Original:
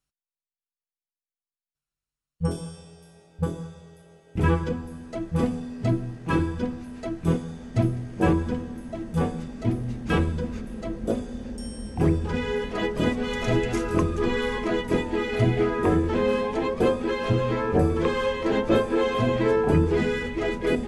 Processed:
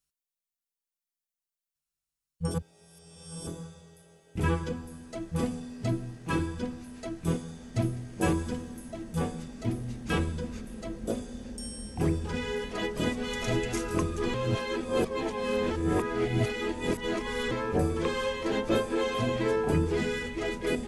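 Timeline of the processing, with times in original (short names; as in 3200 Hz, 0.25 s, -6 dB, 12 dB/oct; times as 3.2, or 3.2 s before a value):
2.54–3.47 reverse
8.2–8.9 high shelf 5000 Hz -> 9600 Hz +8.5 dB
14.34–17.51 reverse
whole clip: high shelf 3900 Hz +11 dB; gain -6 dB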